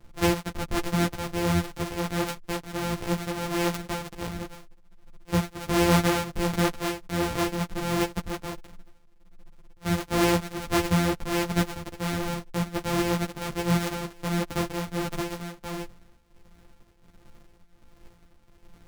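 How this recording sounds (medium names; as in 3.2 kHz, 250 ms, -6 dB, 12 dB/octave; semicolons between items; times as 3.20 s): a buzz of ramps at a fixed pitch in blocks of 256 samples; tremolo triangle 1.4 Hz, depth 65%; a shimmering, thickened sound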